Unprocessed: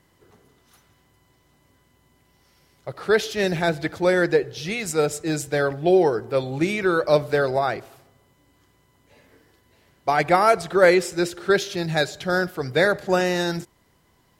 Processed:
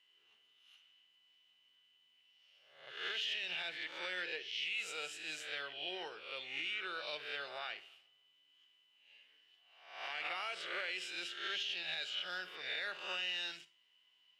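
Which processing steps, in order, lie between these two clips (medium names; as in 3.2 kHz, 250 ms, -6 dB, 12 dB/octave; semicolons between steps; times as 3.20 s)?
reverse spectral sustain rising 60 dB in 0.67 s; band-pass filter 2.9 kHz, Q 11; peak limiter -35.5 dBFS, peak gain reduction 9.5 dB; Schroeder reverb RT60 0.31 s, DRR 14.5 dB; trim +5.5 dB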